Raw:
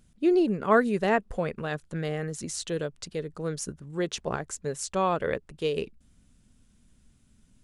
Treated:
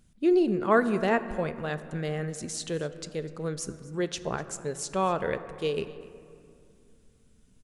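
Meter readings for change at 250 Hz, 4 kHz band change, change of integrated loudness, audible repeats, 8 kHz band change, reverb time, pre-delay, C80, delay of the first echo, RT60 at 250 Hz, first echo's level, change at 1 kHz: 0.0 dB, -1.0 dB, -0.5 dB, 1, -1.0 dB, 2.5 s, 5 ms, 13.5 dB, 0.249 s, 3.1 s, -20.5 dB, -1.0 dB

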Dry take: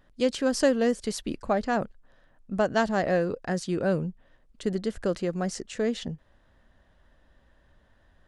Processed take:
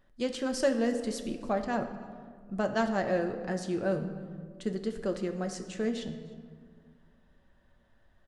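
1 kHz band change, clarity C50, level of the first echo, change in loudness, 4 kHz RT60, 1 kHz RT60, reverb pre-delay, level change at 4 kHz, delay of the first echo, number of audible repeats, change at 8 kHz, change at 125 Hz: -4.5 dB, 9.0 dB, -24.0 dB, -4.5 dB, 1.0 s, 1.7 s, 5 ms, -5.0 dB, 0.306 s, 1, -5.5 dB, -5.0 dB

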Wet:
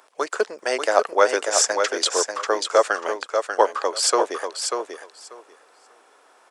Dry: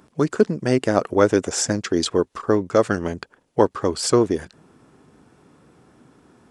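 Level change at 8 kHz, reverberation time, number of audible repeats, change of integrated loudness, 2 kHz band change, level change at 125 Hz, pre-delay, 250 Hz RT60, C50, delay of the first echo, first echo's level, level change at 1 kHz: +5.0 dB, none, 2, -0.5 dB, +5.0 dB, under -35 dB, none, none, none, 0.59 s, -6.0 dB, +5.0 dB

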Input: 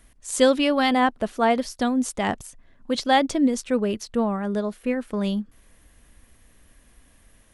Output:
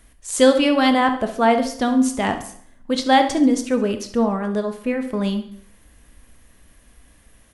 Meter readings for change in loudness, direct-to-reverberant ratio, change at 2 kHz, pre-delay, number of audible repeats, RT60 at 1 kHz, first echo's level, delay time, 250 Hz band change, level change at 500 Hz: +4.0 dB, 7.0 dB, +3.0 dB, 16 ms, 4, 0.55 s, -13.5 dB, 69 ms, +4.0 dB, +3.5 dB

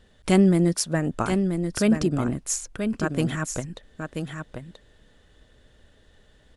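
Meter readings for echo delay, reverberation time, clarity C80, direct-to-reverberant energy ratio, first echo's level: 0.982 s, none, none, none, -6.5 dB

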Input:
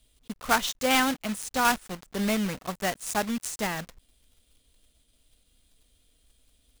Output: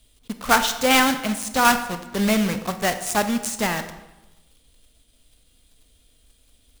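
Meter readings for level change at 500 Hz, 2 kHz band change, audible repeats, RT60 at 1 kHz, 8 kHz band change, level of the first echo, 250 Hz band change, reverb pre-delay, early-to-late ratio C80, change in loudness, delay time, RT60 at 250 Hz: +6.5 dB, +6.5 dB, none, 1.0 s, +6.5 dB, none, +6.5 dB, 24 ms, 13.0 dB, +6.5 dB, none, 1.1 s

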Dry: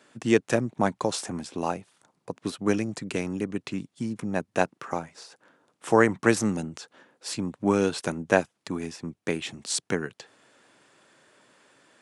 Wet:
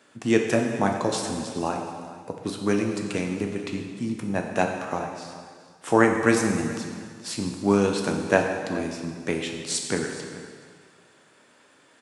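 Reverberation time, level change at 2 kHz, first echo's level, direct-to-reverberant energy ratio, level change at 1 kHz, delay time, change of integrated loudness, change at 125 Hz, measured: 1.8 s, +2.0 dB, -17.5 dB, 2.0 dB, +2.5 dB, 0.425 s, +2.0 dB, +2.0 dB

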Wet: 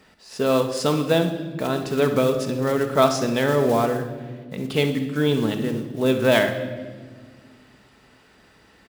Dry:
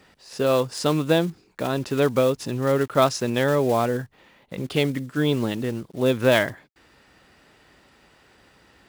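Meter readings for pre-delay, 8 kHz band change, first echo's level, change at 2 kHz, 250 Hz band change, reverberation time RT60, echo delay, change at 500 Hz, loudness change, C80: 5 ms, +1.0 dB, -13.5 dB, +1.0 dB, +2.0 dB, 1.6 s, 64 ms, +1.0 dB, +1.0 dB, 11.0 dB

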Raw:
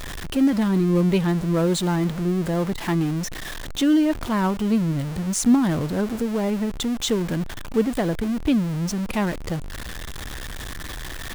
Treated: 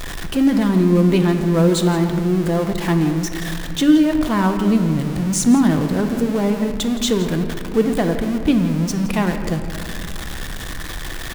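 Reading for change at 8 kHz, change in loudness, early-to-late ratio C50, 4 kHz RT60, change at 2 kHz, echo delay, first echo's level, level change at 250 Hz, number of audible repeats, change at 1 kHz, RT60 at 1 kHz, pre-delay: +4.0 dB, +4.5 dB, 7.5 dB, 1.4 s, +4.5 dB, 0.168 s, -15.5 dB, +5.0 dB, 1, +4.5 dB, 2.2 s, 3 ms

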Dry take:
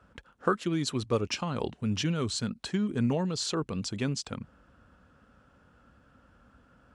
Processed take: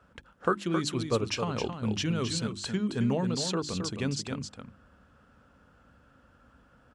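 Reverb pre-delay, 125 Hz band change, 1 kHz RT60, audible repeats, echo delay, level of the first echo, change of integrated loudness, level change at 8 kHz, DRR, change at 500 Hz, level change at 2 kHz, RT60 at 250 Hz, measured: none, 0.0 dB, none, 1, 0.267 s, -7.0 dB, +0.5 dB, +1.0 dB, none, +0.5 dB, +1.0 dB, none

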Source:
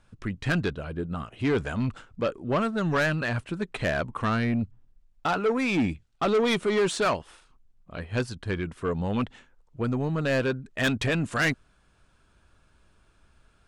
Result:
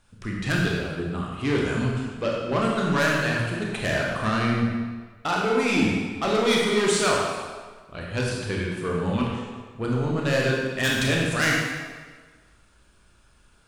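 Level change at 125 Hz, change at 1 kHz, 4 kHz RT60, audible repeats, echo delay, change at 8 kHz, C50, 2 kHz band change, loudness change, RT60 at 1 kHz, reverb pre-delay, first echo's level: +3.0 dB, +3.0 dB, 1.2 s, none, none, +9.0 dB, 0.0 dB, +4.5 dB, +3.0 dB, 1.5 s, 24 ms, none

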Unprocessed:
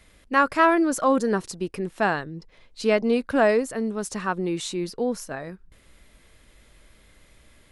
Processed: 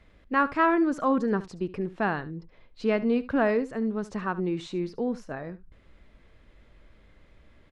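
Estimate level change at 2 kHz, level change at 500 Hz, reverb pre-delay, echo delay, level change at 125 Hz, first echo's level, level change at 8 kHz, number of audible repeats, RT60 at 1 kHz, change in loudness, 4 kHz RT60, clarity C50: -5.0 dB, -5.0 dB, none, 72 ms, -0.5 dB, -17.0 dB, under -15 dB, 1, none, -3.5 dB, none, none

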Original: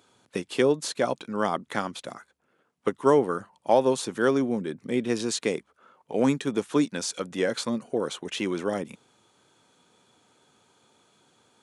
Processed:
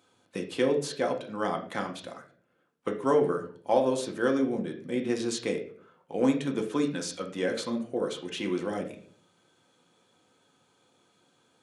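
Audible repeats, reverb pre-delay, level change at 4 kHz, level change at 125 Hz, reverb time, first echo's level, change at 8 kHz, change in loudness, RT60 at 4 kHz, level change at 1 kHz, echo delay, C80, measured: none, 4 ms, -4.0 dB, -3.0 dB, 0.50 s, none, -5.5 dB, -3.0 dB, 0.35 s, -4.0 dB, none, 14.0 dB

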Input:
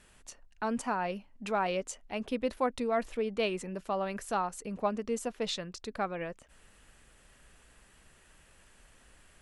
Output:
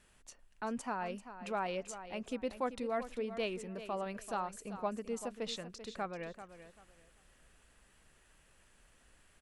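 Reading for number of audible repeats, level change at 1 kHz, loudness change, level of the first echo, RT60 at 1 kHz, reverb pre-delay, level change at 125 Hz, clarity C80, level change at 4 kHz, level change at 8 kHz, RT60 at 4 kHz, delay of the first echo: 2, -5.5 dB, -5.5 dB, -12.0 dB, none, none, -5.5 dB, none, -5.5 dB, -5.5 dB, none, 0.389 s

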